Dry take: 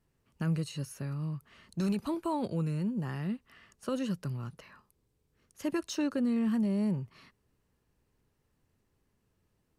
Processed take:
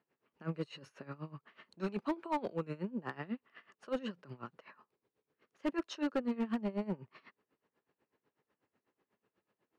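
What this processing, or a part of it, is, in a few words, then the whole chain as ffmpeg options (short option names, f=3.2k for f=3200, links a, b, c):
helicopter radio: -af "highpass=330,lowpass=2.6k,aeval=exprs='val(0)*pow(10,-20*(0.5-0.5*cos(2*PI*8.1*n/s))/20)':c=same,asoftclip=type=hard:threshold=-34dB,volume=6dB"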